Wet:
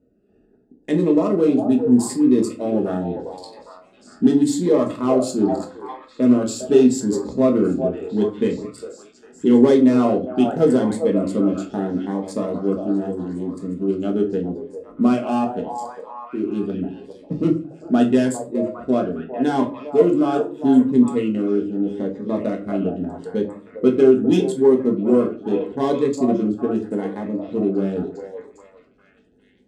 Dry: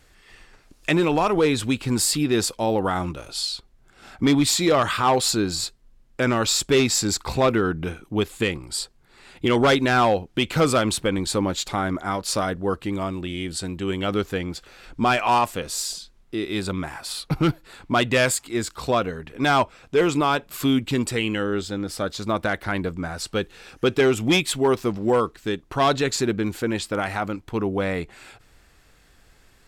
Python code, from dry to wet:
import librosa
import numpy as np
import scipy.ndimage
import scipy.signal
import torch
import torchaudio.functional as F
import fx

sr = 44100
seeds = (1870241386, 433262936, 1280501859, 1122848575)

p1 = fx.wiener(x, sr, points=41)
p2 = scipy.signal.sosfilt(scipy.signal.butter(2, 94.0, 'highpass', fs=sr, output='sos'), p1)
p3 = fx.high_shelf(p2, sr, hz=2300.0, db=-11.5)
p4 = fx.notch(p3, sr, hz=2300.0, q=14.0)
p5 = fx.echo_stepped(p4, sr, ms=404, hz=680.0, octaves=0.7, feedback_pct=70, wet_db=-4.5)
p6 = fx.room_shoebox(p5, sr, seeds[0], volume_m3=200.0, walls='furnished', distance_m=1.4)
p7 = np.clip(10.0 ** (13.0 / 20.0) * p6, -1.0, 1.0) / 10.0 ** (13.0 / 20.0)
p8 = p6 + (p7 * librosa.db_to_amplitude(-10.0))
p9 = fx.graphic_eq(p8, sr, hz=(125, 250, 500, 8000), db=(-7, 12, 7, 10))
p10 = fx.notch_cascade(p9, sr, direction='rising', hz=0.8)
y = p10 * librosa.db_to_amplitude(-7.5)